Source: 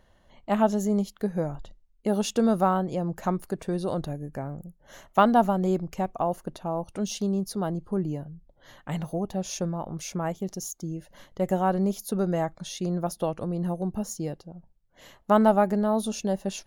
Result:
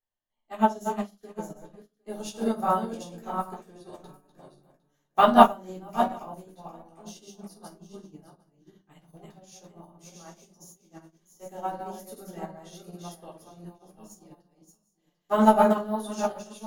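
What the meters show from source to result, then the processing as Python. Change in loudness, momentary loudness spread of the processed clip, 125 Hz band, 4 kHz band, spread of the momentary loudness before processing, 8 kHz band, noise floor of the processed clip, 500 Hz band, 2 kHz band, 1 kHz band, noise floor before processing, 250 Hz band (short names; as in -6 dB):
+2.5 dB, 24 LU, -11.5 dB, -2.0 dB, 13 LU, -8.5 dB, -76 dBFS, -2.0 dB, +0.5 dB, +2.5 dB, -62 dBFS, -4.5 dB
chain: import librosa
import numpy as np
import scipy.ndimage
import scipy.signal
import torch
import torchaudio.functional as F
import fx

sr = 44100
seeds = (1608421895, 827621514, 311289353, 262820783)

y = fx.reverse_delay_fb(x, sr, ms=379, feedback_pct=43, wet_db=-3.0)
y = fx.tilt_eq(y, sr, slope=2.0)
y = fx.room_shoebox(y, sr, seeds[0], volume_m3=280.0, walls='furnished', distance_m=3.7)
y = fx.upward_expand(y, sr, threshold_db=-32.0, expansion=2.5)
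y = F.gain(torch.from_numpy(y), -1.0).numpy()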